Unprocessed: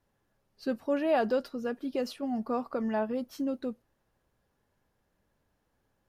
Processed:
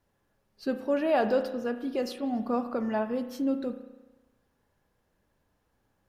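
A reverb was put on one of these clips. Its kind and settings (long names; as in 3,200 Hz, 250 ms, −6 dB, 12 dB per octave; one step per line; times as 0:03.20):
spring reverb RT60 1.1 s, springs 33 ms, chirp 60 ms, DRR 8 dB
level +1.5 dB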